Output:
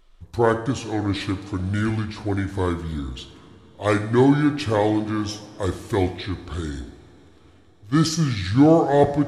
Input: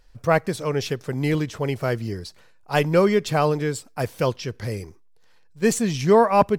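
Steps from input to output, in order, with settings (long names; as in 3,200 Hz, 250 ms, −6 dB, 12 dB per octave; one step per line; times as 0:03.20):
coupled-rooms reverb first 0.43 s, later 3.6 s, from −18 dB, DRR 7.5 dB
speed change −29%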